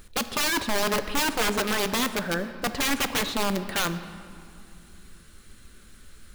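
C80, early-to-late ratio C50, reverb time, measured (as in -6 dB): 12.0 dB, 11.5 dB, 2.5 s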